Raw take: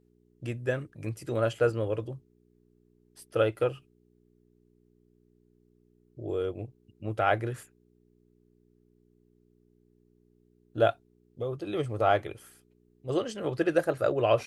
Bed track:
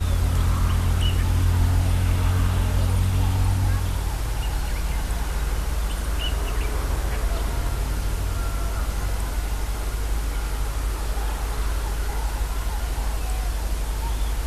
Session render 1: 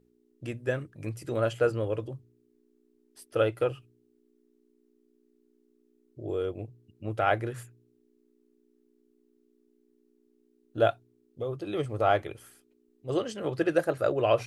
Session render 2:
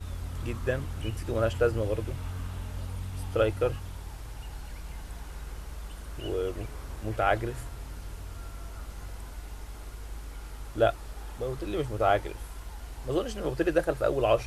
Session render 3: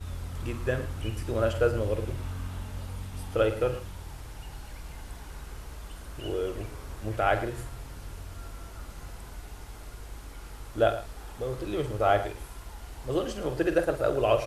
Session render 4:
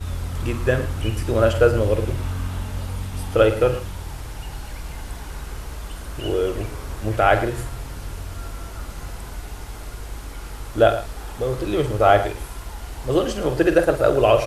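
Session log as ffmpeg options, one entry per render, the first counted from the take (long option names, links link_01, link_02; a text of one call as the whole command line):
ffmpeg -i in.wav -af "bandreject=frequency=60:width_type=h:width=4,bandreject=frequency=120:width_type=h:width=4,bandreject=frequency=180:width_type=h:width=4" out.wav
ffmpeg -i in.wav -i bed.wav -filter_complex "[1:a]volume=-15dB[link_01];[0:a][link_01]amix=inputs=2:normalize=0" out.wav
ffmpeg -i in.wav -filter_complex "[0:a]asplit=2[link_01][link_02];[link_02]adelay=48,volume=-10.5dB[link_03];[link_01][link_03]amix=inputs=2:normalize=0,asplit=2[link_04][link_05];[link_05]adelay=110.8,volume=-13dB,highshelf=frequency=4000:gain=-2.49[link_06];[link_04][link_06]amix=inputs=2:normalize=0" out.wav
ffmpeg -i in.wav -af "volume=9dB,alimiter=limit=-3dB:level=0:latency=1" out.wav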